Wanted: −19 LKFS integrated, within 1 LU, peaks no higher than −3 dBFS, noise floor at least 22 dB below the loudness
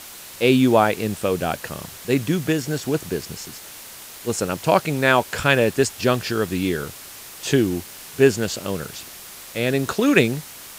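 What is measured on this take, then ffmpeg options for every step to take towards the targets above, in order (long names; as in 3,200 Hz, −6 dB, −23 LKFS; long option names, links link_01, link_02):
background noise floor −40 dBFS; target noise floor −43 dBFS; integrated loudness −21.0 LKFS; sample peak −1.5 dBFS; target loudness −19.0 LKFS
→ -af "afftdn=noise_reduction=6:noise_floor=-40"
-af "volume=2dB,alimiter=limit=-3dB:level=0:latency=1"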